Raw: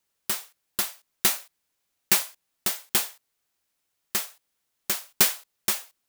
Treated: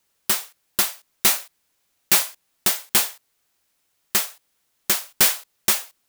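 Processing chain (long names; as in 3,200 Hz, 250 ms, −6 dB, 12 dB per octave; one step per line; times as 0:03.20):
hard clipping −18 dBFS, distortion −9 dB
level +7.5 dB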